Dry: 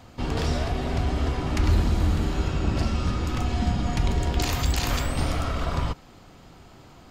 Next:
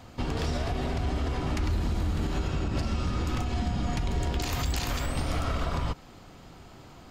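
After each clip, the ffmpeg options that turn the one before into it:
ffmpeg -i in.wav -af "alimiter=limit=-20dB:level=0:latency=1:release=104" out.wav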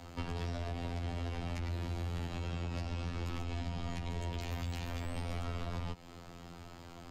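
ffmpeg -i in.wav -filter_complex "[0:a]afftfilt=real='hypot(re,im)*cos(PI*b)':imag='0':win_size=2048:overlap=0.75,adynamicequalizer=threshold=0.00251:dfrequency=1300:dqfactor=1.4:tfrequency=1300:tqfactor=1.4:attack=5:release=100:ratio=0.375:range=3:mode=cutabove:tftype=bell,acrossover=split=150|510|3200[link_01][link_02][link_03][link_04];[link_01]acompressor=threshold=-40dB:ratio=4[link_05];[link_02]acompressor=threshold=-48dB:ratio=4[link_06];[link_03]acompressor=threshold=-45dB:ratio=4[link_07];[link_04]acompressor=threshold=-57dB:ratio=4[link_08];[link_05][link_06][link_07][link_08]amix=inputs=4:normalize=0,volume=2dB" out.wav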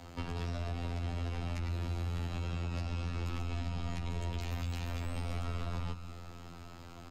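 ffmpeg -i in.wav -af "aecho=1:1:185|370|555|740|925|1110:0.224|0.132|0.0779|0.046|0.0271|0.016" out.wav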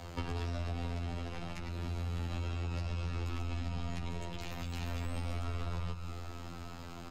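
ffmpeg -i in.wav -af "acompressor=threshold=-37dB:ratio=4,flanger=delay=1.7:depth=4.3:regen=-62:speed=0.34:shape=triangular,volume=8dB" out.wav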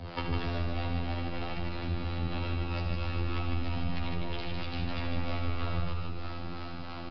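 ffmpeg -i in.wav -filter_complex "[0:a]acrossover=split=450[link_01][link_02];[link_01]aeval=exprs='val(0)*(1-0.7/2+0.7/2*cos(2*PI*3.1*n/s))':channel_layout=same[link_03];[link_02]aeval=exprs='val(0)*(1-0.7/2-0.7/2*cos(2*PI*3.1*n/s))':channel_layout=same[link_04];[link_03][link_04]amix=inputs=2:normalize=0,asplit=2[link_05][link_06];[link_06]aecho=0:1:75.8|154.5:0.355|0.631[link_07];[link_05][link_07]amix=inputs=2:normalize=0,aresample=11025,aresample=44100,volume=8dB" out.wav

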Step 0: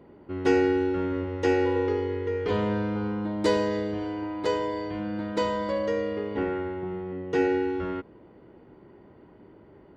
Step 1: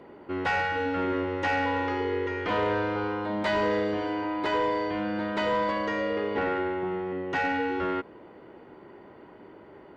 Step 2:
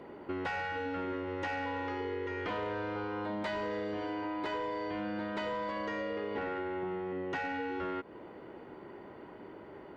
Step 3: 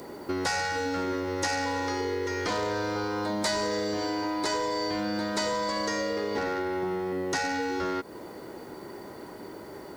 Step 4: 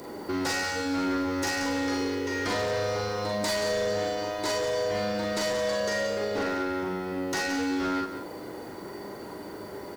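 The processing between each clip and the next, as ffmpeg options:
ffmpeg -i in.wav -filter_complex "[0:a]acrossover=split=3100[link_01][link_02];[link_02]acompressor=threshold=-55dB:ratio=4:attack=1:release=60[link_03];[link_01][link_03]amix=inputs=2:normalize=0,afftfilt=real='re*lt(hypot(re,im),0.316)':imag='im*lt(hypot(re,im),0.316)':win_size=1024:overlap=0.75,asplit=2[link_04][link_05];[link_05]highpass=frequency=720:poles=1,volume=14dB,asoftclip=type=tanh:threshold=-16.5dB[link_06];[link_04][link_06]amix=inputs=2:normalize=0,lowpass=frequency=4300:poles=1,volume=-6dB" out.wav
ffmpeg -i in.wav -af "acompressor=threshold=-34dB:ratio=6" out.wav
ffmpeg -i in.wav -af "aexciter=amount=15:drive=3:freq=4400,volume=6.5dB" out.wav
ffmpeg -i in.wav -filter_complex "[0:a]asplit=2[link_01][link_02];[link_02]aecho=0:1:40|50:0.708|0.473[link_03];[link_01][link_03]amix=inputs=2:normalize=0,asoftclip=type=hard:threshold=-25dB,asplit=2[link_04][link_05];[link_05]aecho=0:1:180:0.299[link_06];[link_04][link_06]amix=inputs=2:normalize=0" out.wav

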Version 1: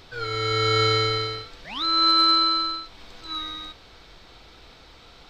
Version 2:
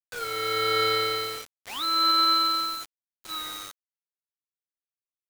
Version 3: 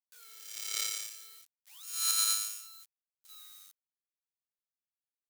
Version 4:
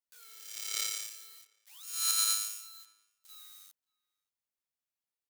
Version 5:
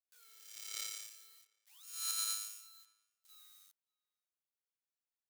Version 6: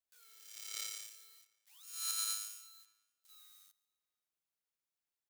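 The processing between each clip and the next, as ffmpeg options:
ffmpeg -i in.wav -filter_complex "[0:a]acrossover=split=320 5100:gain=0.158 1 0.0708[link_01][link_02][link_03];[link_01][link_02][link_03]amix=inputs=3:normalize=0,acrusher=bits=5:mix=0:aa=0.000001,volume=-1.5dB" out.wav
ffmpeg -i in.wav -af "aeval=exprs='0.224*(cos(1*acos(clip(val(0)/0.224,-1,1)))-cos(1*PI/2))+0.0158*(cos(2*acos(clip(val(0)/0.224,-1,1)))-cos(2*PI/2))+0.0891*(cos(3*acos(clip(val(0)/0.224,-1,1)))-cos(3*PI/2))':channel_layout=same,aderivative,volume=1.5dB" out.wav
ffmpeg -i in.wav -filter_complex "[0:a]asplit=2[link_01][link_02];[link_02]adelay=577.3,volume=-26dB,highshelf=frequency=4000:gain=-13[link_03];[link_01][link_03]amix=inputs=2:normalize=0" out.wav
ffmpeg -i in.wav -af "highpass=280,volume=-8.5dB" out.wav
ffmpeg -i in.wav -af "aecho=1:1:139|278|417:0.0708|0.0311|0.0137" out.wav

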